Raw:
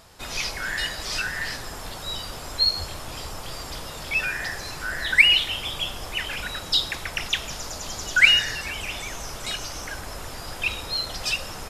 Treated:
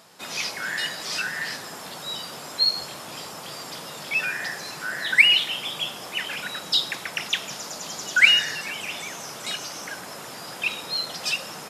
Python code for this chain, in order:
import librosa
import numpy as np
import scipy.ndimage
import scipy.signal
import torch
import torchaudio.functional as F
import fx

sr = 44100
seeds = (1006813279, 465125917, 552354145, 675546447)

y = scipy.signal.sosfilt(scipy.signal.cheby1(3, 1.0, 160.0, 'highpass', fs=sr, output='sos'), x)